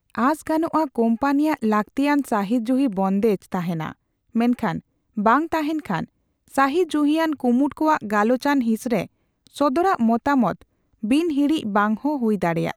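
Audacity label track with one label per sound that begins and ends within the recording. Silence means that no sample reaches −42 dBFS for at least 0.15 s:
4.350000	4.800000	sound
5.170000	6.050000	sound
6.480000	9.060000	sound
9.470000	10.620000	sound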